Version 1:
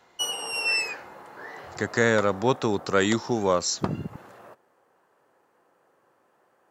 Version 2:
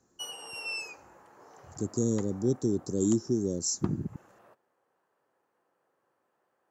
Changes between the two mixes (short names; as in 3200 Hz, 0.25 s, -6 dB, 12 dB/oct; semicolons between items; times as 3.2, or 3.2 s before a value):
speech: add Chebyshev band-stop 350–6300 Hz, order 3; background -11.0 dB